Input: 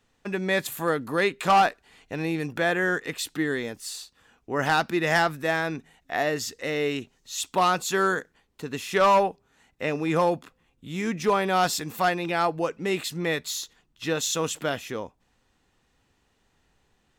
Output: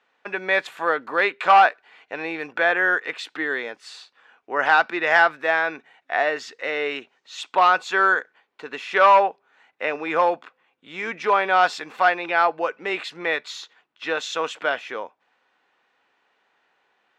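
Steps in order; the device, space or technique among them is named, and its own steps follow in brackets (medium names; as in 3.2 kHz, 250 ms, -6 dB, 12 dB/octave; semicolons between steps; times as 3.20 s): tin-can telephone (band-pass 610–2700 Hz; small resonant body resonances 1.5/2.3 kHz, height 6 dB); trim +6.5 dB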